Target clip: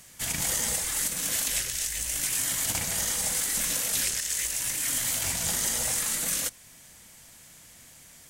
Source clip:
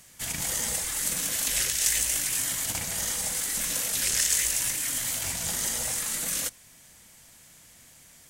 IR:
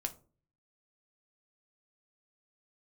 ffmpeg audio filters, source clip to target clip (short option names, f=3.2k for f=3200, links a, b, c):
-filter_complex "[0:a]asettb=1/sr,asplit=3[a][b][c];[a]atrim=end=1.594[d];[b]atrim=start=1.59:end=2.23,asetpts=PTS-STARTPTS,afade=t=in:d=0.004:c=qsin,afade=t=out:st=0.636:d=0.004:c=qsin,acrossover=split=160[e][f];[f]acompressor=threshold=-28dB:ratio=6[g];[e][g]amix=inputs=2:normalize=0[h];[c]atrim=start=2.226[i];[d][h]acrossfade=d=0.004:c1=hsin:c2=qsin[j];[j][i]acrossfade=d=0.004:c1=qsin:c2=hsin,alimiter=limit=-17dB:level=0:latency=1:release=321,volume=2dB"